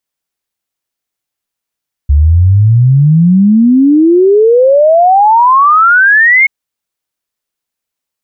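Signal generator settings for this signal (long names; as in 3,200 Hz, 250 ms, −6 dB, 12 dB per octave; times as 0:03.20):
exponential sine sweep 69 Hz → 2,200 Hz 4.38 s −3 dBFS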